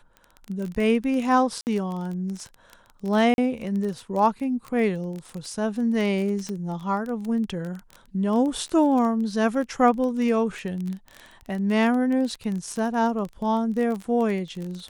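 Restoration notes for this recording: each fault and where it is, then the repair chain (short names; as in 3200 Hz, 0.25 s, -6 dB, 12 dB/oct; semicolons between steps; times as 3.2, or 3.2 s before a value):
crackle 23/s -28 dBFS
1.61–1.67 gap 59 ms
3.34–3.38 gap 41 ms
6.49 pop -19 dBFS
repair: de-click; interpolate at 1.61, 59 ms; interpolate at 3.34, 41 ms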